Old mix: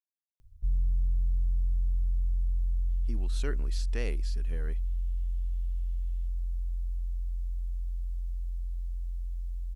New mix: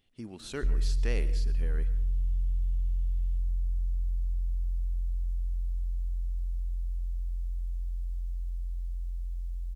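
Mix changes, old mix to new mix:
speech: entry -2.90 s; reverb: on, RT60 0.75 s

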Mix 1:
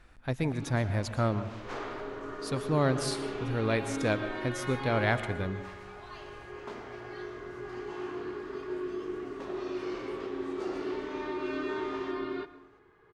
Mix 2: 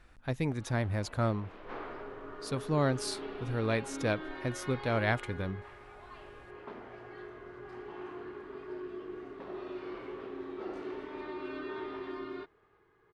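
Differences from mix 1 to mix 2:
first sound: add air absorption 320 m; second sound -4.5 dB; reverb: off

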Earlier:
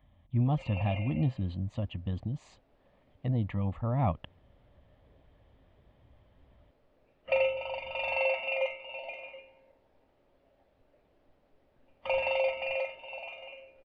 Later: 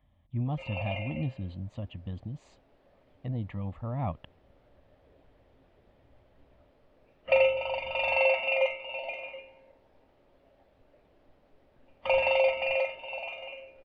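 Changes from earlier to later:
speech -4.0 dB; background +4.5 dB

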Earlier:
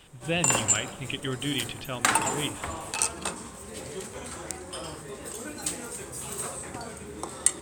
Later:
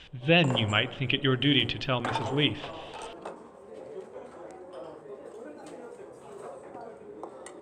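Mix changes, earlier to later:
speech +6.5 dB; background: add band-pass 530 Hz, Q 1.4

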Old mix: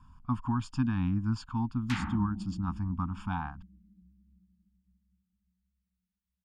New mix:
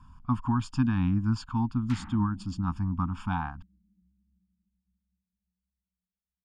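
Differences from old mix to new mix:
speech +3.5 dB; background -8.0 dB

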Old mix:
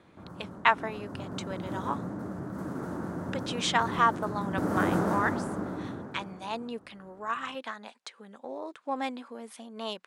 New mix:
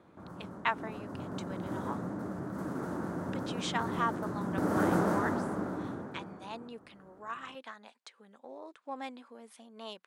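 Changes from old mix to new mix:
speech -8.0 dB; master: add low shelf 120 Hz -5.5 dB

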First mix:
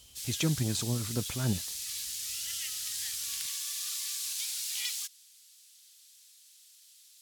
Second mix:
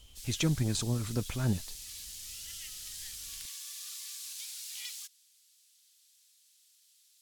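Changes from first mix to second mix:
background -7.5 dB; master: remove HPF 77 Hz 12 dB/oct

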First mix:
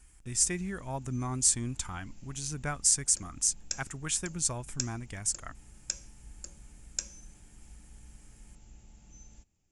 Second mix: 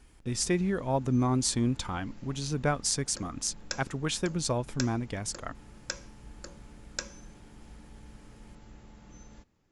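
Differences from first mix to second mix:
background: add band shelf 1400 Hz +8.5 dB 1.3 oct; master: add ten-band EQ 125 Hz +4 dB, 250 Hz +7 dB, 500 Hz +11 dB, 1000 Hz +4 dB, 4000 Hz +9 dB, 8000 Hz -10 dB

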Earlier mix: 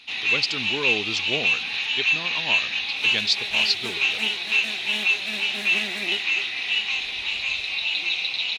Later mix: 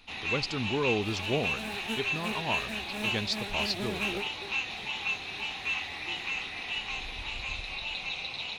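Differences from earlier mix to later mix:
second sound: entry -1.95 s; master: remove weighting filter D

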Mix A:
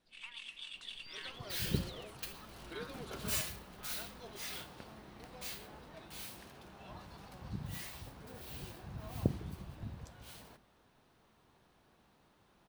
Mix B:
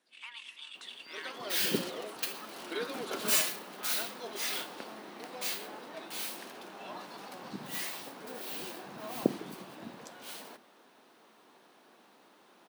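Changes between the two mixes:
speech +6.5 dB; second sound +9.0 dB; master: add HPF 240 Hz 24 dB/oct

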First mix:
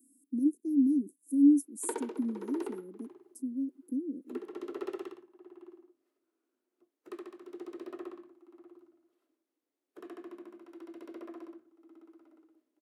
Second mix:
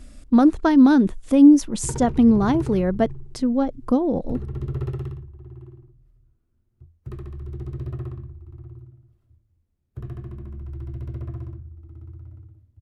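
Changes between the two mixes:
speech: remove inverse Chebyshev band-stop 790–3300 Hz, stop band 70 dB; master: remove Chebyshev high-pass 280 Hz, order 5

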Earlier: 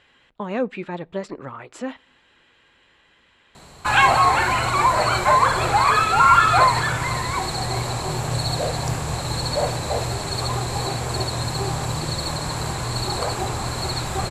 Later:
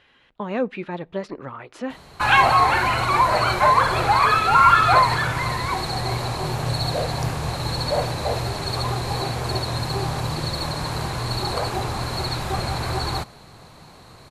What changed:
background: entry -1.65 s; master: add bell 7600 Hz -13 dB 0.23 oct

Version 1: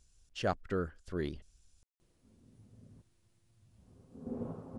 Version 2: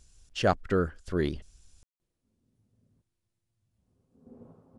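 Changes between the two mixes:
speech +8.0 dB; background -11.5 dB

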